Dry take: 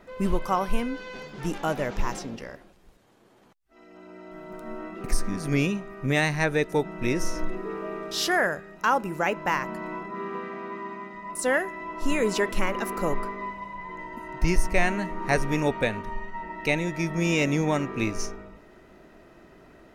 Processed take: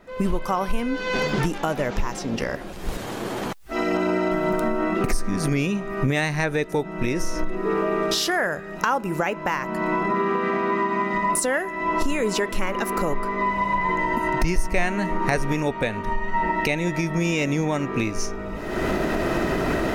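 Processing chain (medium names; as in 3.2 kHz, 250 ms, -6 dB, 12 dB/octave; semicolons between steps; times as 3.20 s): recorder AGC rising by 42 dB/s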